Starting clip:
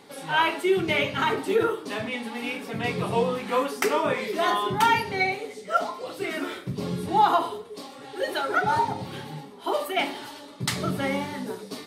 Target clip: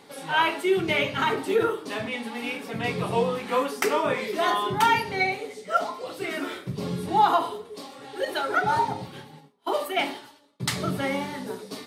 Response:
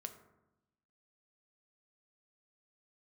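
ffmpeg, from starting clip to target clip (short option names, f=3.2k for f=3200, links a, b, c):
-filter_complex "[0:a]bandreject=f=50:t=h:w=6,bandreject=f=100:t=h:w=6,bandreject=f=150:t=h:w=6,bandreject=f=200:t=h:w=6,bandreject=f=250:t=h:w=6,bandreject=f=300:t=h:w=6,bandreject=f=350:t=h:w=6,bandreject=f=400:t=h:w=6,asettb=1/sr,asplit=3[a][b][c];[a]atrim=end=8.254[d];[b]atrim=start=8.25:end=10.6,asetpts=PTS-STARTPTS,afade=t=in:d=0.004:c=qsin,afade=t=out:st=2.346:d=0.004:c=qsin,agate=range=-33dB:threshold=-31dB:ratio=3:detection=peak[e];[c]atrim=start=10.596[f];[d][e]acrossfade=d=0.004:c1=hsin:c2=qsin[g];[g][f]acrossfade=d=0.004:c1=qsin:c2=hsin"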